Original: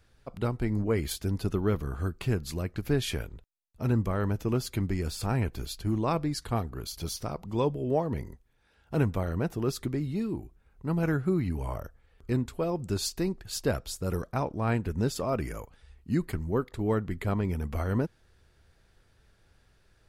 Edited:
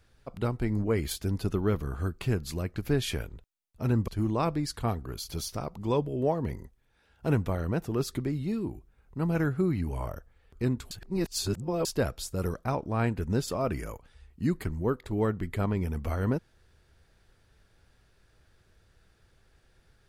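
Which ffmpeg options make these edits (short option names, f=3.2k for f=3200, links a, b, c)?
-filter_complex "[0:a]asplit=4[a][b][c][d];[a]atrim=end=4.082[e];[b]atrim=start=5.758:end=12.592[f];[c]atrim=start=12.588:end=13.532,asetpts=PTS-STARTPTS,areverse[g];[d]atrim=start=13.528[h];[e][f]acrossfade=d=0.004:c1=hsin:c2=hsin[i];[i][g]acrossfade=d=0.004:c1=hsin:c2=hsin[j];[j][h]acrossfade=d=0.004:c1=hsin:c2=hsin"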